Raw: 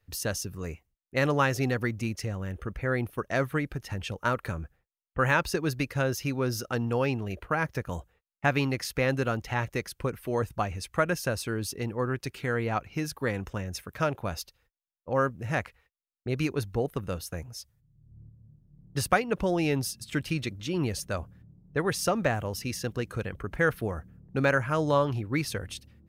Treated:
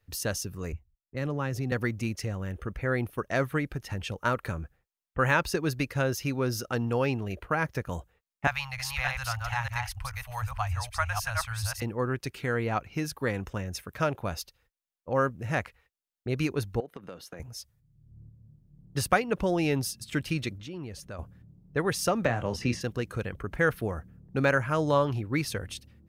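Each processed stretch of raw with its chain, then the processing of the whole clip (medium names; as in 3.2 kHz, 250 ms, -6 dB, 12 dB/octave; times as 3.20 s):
0.72–1.72 s: bass shelf 350 Hz +11 dB + compression 2.5:1, threshold -32 dBFS + three bands expanded up and down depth 70%
8.47–11.82 s: chunks repeated in reverse 303 ms, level -3 dB + elliptic band-stop 100–790 Hz, stop band 50 dB + bass shelf 93 Hz +11 dB
16.80–17.40 s: three-band isolator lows -23 dB, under 170 Hz, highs -12 dB, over 4.6 kHz + compression, threshold -37 dBFS + band-stop 2.6 kHz, Q 21
20.58–21.19 s: treble shelf 4.7 kHz -7.5 dB + compression 2:1, threshold -43 dBFS
22.25–22.81 s: distance through air 70 m + doubling 25 ms -9 dB + three bands compressed up and down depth 100%
whole clip: none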